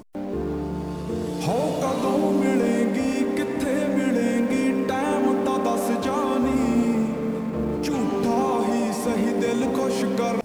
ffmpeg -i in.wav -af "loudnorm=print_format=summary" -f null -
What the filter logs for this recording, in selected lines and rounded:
Input Integrated:    -23.5 LUFS
Input True Peak:     -10.9 dBTP
Input LRA:             1.4 LU
Input Threshold:     -33.5 LUFS